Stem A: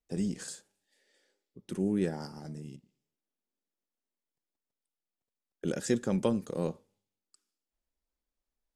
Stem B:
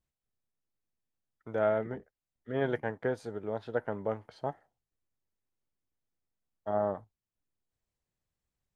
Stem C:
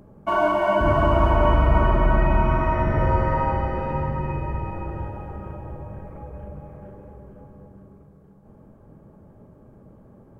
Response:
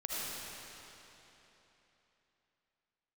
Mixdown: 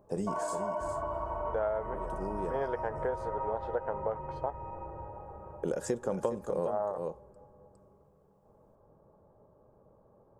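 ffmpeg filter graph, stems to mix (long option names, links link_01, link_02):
-filter_complex "[0:a]volume=0dB,asplit=2[link_01][link_02];[link_02]volume=-9.5dB[link_03];[1:a]equalizer=frequency=3100:width=0.38:gain=7,volume=-6.5dB,asplit=2[link_04][link_05];[2:a]acompressor=threshold=-24dB:ratio=3,volume=-16dB[link_06];[link_05]apad=whole_len=386013[link_07];[link_01][link_07]sidechaincompress=threshold=-52dB:ratio=8:attack=30:release=811[link_08];[link_03]aecho=0:1:409:1[link_09];[link_08][link_04][link_06][link_09]amix=inputs=4:normalize=0,equalizer=frequency=250:width_type=o:width=1:gain=-5,equalizer=frequency=500:width_type=o:width=1:gain=9,equalizer=frequency=1000:width_type=o:width=1:gain=10,equalizer=frequency=2000:width_type=o:width=1:gain=-4,equalizer=frequency=4000:width_type=o:width=1:gain=-8,acompressor=threshold=-29dB:ratio=4"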